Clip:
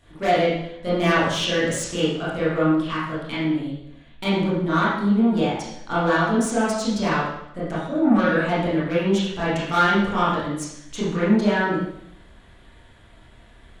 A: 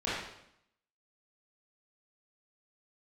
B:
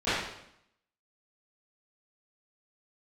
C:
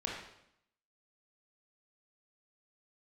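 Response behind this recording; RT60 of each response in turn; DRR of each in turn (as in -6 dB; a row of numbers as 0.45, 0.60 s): A; 0.75, 0.75, 0.75 s; -11.0, -20.5, -3.0 dB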